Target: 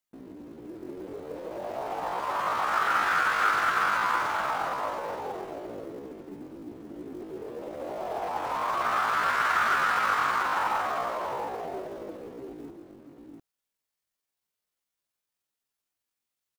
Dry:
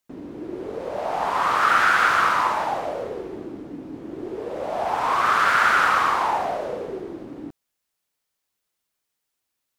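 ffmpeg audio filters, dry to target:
-af "acrusher=bits=7:mode=log:mix=0:aa=0.000001,aecho=1:1:407:0.596,atempo=0.59,volume=-7.5dB"

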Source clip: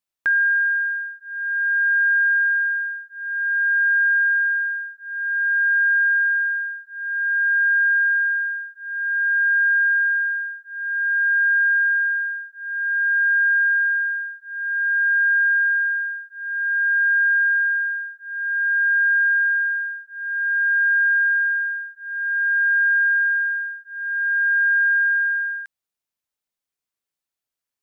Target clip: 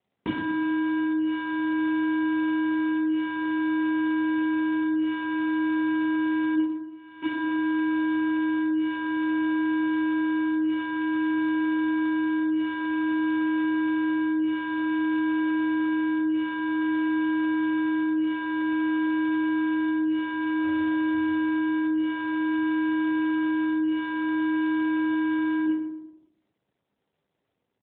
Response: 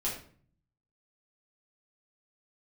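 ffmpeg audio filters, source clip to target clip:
-filter_complex "[0:a]asplit=3[a][b][c];[a]afade=t=out:st=0.74:d=0.02[d];[b]adynamicequalizer=threshold=0.0126:dfrequency=1500:dqfactor=6.2:tfrequency=1500:tqfactor=6.2:attack=5:release=100:ratio=0.375:range=1.5:mode=cutabove:tftype=bell,afade=t=in:st=0.74:d=0.02,afade=t=out:st=1.29:d=0.02[e];[c]afade=t=in:st=1.29:d=0.02[f];[d][e][f]amix=inputs=3:normalize=0,asplit=3[g][h][i];[g]afade=t=out:st=6.54:d=0.02[j];[h]bandreject=f=1.6k:w=6.9,afade=t=in:st=6.54:d=0.02,afade=t=out:st=7.22:d=0.02[k];[i]afade=t=in:st=7.22:d=0.02[l];[j][k][l]amix=inputs=3:normalize=0,acompressor=threshold=-29dB:ratio=20,acrusher=samples=34:mix=1:aa=0.000001,asplit=3[m][n][o];[m]afade=t=out:st=20.62:d=0.02[p];[n]aeval=exprs='0.0422*(cos(1*acos(clip(val(0)/0.0422,-1,1)))-cos(1*PI/2))+0.000473*(cos(5*acos(clip(val(0)/0.0422,-1,1)))-cos(5*PI/2))+0.00376*(cos(6*acos(clip(val(0)/0.0422,-1,1)))-cos(6*PI/2))+0.0119*(cos(8*acos(clip(val(0)/0.0422,-1,1)))-cos(8*PI/2))':c=same,afade=t=in:st=20.62:d=0.02,afade=t=out:st=21.12:d=0.02[q];[o]afade=t=in:st=21.12:d=0.02[r];[p][q][r]amix=inputs=3:normalize=0,asplit=2[s][t];[t]adelay=115,lowpass=f=1.5k:p=1,volume=-6.5dB,asplit=2[u][v];[v]adelay=115,lowpass=f=1.5k:p=1,volume=0.44,asplit=2[w][x];[x]adelay=115,lowpass=f=1.5k:p=1,volume=0.44,asplit=2[y][z];[z]adelay=115,lowpass=f=1.5k:p=1,volume=0.44,asplit=2[aa][ab];[ab]adelay=115,lowpass=f=1.5k:p=1,volume=0.44[ac];[s][u][w][y][aa][ac]amix=inputs=6:normalize=0[ad];[1:a]atrim=start_sample=2205,asetrate=48510,aresample=44100[ae];[ad][ae]afir=irnorm=-1:irlink=0,volume=3dB" -ar 8000 -c:a libopencore_amrnb -b:a 12200

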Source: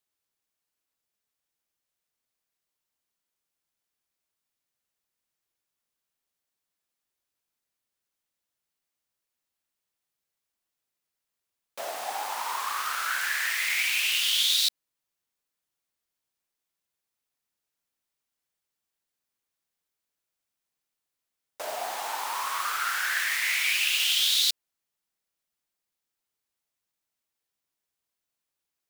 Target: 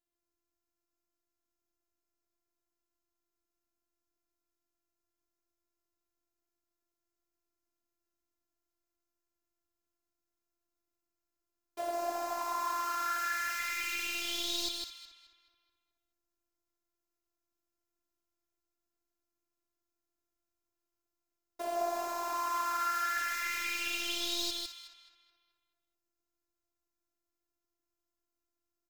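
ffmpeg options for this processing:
-filter_complex "[0:a]afftfilt=real='hypot(re,im)*cos(PI*b)':imag='0':win_size=512:overlap=0.75,asplit=2[a][b];[b]adelay=214,lowpass=f=3k:p=1,volume=-8.5dB,asplit=2[c][d];[d]adelay=214,lowpass=f=3k:p=1,volume=0.53,asplit=2[e][f];[f]adelay=214,lowpass=f=3k:p=1,volume=0.53,asplit=2[g][h];[h]adelay=214,lowpass=f=3k:p=1,volume=0.53,asplit=2[i][j];[j]adelay=214,lowpass=f=3k:p=1,volume=0.53,asplit=2[k][l];[l]adelay=214,lowpass=f=3k:p=1,volume=0.53[m];[c][e][g][i][k][m]amix=inputs=6:normalize=0[n];[a][n]amix=inputs=2:normalize=0,asoftclip=type=hard:threshold=-15.5dB,tiltshelf=f=640:g=9,asplit=2[o][p];[p]aecho=0:1:154:0.596[q];[o][q]amix=inputs=2:normalize=0,volume=2.5dB"

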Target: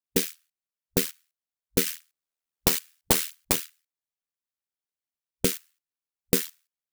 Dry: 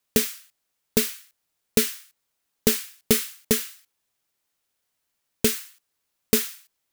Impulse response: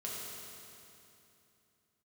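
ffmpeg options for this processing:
-filter_complex "[0:a]asettb=1/sr,asplit=3[a][b][c];[a]atrim=end=1.864[d];[b]atrim=start=1.86:end=3.56,asetpts=PTS-STARTPTS,afade=t=in:d=0.004:c=qsin,afade=t=out:st=1.696:d=0.004:c=qsin,aeval=exprs='0.668*(cos(1*acos(clip(val(0)/0.668,-1,1)))-cos(1*PI/2))+0.266*(cos(7*acos(clip(val(0)/0.668,-1,1)))-cos(7*PI/2))':c=same[e];[c]atrim=start=3.556[f];[d][e]acrossfade=d=0.004:c1=hsin:c2=qsin[g];[g][f]acrossfade=d=0.004:c1=qsin:c2=hsin,aeval=exprs='val(0)*sin(2*PI*40*n/s)':c=same,afwtdn=0.00891"

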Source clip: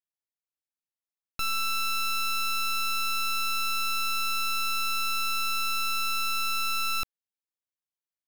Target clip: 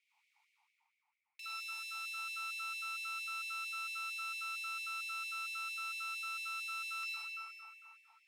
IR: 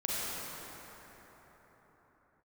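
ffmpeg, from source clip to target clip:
-filter_complex "[0:a]asplit=3[a][b][c];[a]bandpass=f=300:t=q:w=8,volume=0dB[d];[b]bandpass=f=870:t=q:w=8,volume=-6dB[e];[c]bandpass=f=2.24k:t=q:w=8,volume=-9dB[f];[d][e][f]amix=inputs=3:normalize=0,areverse,acompressor=mode=upward:threshold=-54dB:ratio=2.5,areverse,aeval=exprs='0.0106*(cos(1*acos(clip(val(0)/0.0106,-1,1)))-cos(1*PI/2))+0.00237*(cos(6*acos(clip(val(0)/0.0106,-1,1)))-cos(6*PI/2))':c=same[g];[1:a]atrim=start_sample=2205,asetrate=48510,aresample=44100[h];[g][h]afir=irnorm=-1:irlink=0,afftfilt=real='re*gte(b*sr/1024,650*pow(1900/650,0.5+0.5*sin(2*PI*4.4*pts/sr)))':imag='im*gte(b*sr/1024,650*pow(1900/650,0.5+0.5*sin(2*PI*4.4*pts/sr)))':win_size=1024:overlap=0.75,volume=3.5dB"

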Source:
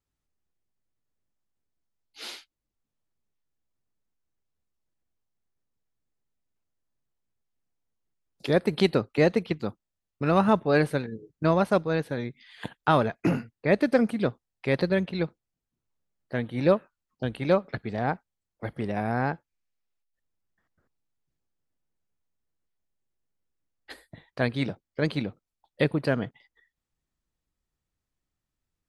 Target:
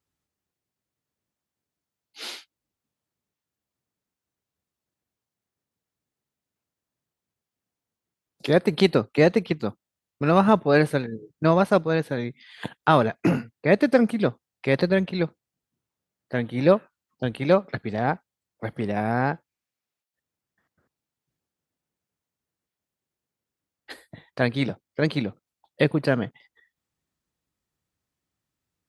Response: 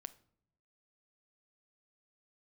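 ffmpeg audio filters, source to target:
-af "highpass=87,volume=3.5dB"

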